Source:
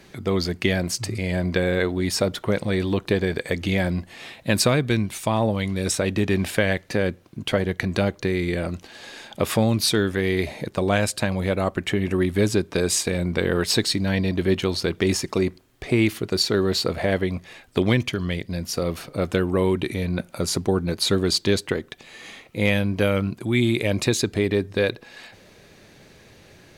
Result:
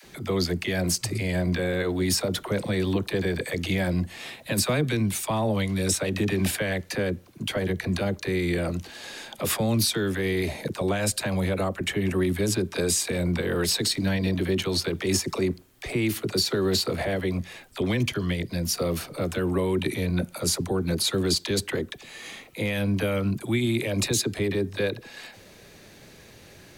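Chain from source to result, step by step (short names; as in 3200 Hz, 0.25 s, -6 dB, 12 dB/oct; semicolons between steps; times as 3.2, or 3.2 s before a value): high shelf 7700 Hz +8 dB; limiter -14.5 dBFS, peak gain reduction 9.5 dB; dispersion lows, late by 43 ms, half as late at 470 Hz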